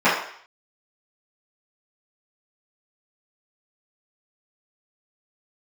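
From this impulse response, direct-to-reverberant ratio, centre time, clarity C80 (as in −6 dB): −14.5 dB, 45 ms, 7.5 dB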